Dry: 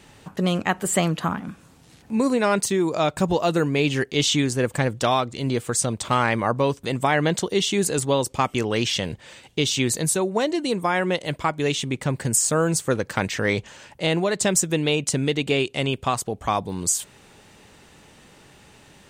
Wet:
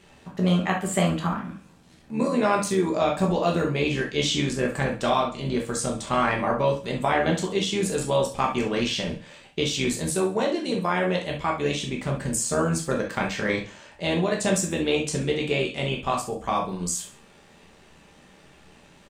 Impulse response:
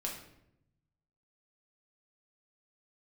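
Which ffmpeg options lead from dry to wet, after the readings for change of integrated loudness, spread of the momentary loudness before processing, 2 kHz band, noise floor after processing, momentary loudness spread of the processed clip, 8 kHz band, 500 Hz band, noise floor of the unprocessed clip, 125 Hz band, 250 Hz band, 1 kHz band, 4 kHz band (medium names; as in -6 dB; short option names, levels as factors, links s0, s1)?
-2.5 dB, 6 LU, -2.5 dB, -54 dBFS, 6 LU, -6.0 dB, -1.5 dB, -52 dBFS, -2.5 dB, -1.5 dB, -1.5 dB, -3.5 dB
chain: -filter_complex "[0:a]highshelf=f=7300:g=-7,tremolo=f=79:d=0.571,aecho=1:1:67|134|201:0.211|0.0719|0.0244[s0];[1:a]atrim=start_sample=2205,atrim=end_sample=3528[s1];[s0][s1]afir=irnorm=-1:irlink=0"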